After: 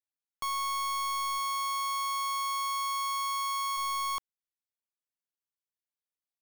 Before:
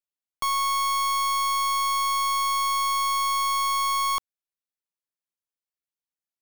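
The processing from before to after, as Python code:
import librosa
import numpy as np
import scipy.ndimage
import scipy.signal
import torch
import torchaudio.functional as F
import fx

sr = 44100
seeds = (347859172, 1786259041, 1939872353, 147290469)

y = fx.highpass(x, sr, hz=fx.line((1.38, 210.0), (3.76, 710.0)), slope=24, at=(1.38, 3.76), fade=0.02)
y = F.gain(torch.from_numpy(y), -7.5).numpy()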